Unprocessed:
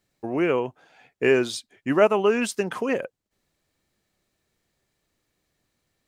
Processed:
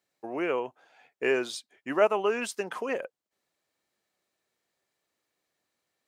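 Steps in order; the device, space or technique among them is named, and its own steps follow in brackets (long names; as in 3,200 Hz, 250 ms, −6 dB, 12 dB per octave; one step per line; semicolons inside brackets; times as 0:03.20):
filter by subtraction (in parallel: low-pass filter 690 Hz 12 dB per octave + polarity inversion)
on the sum: level −5.5 dB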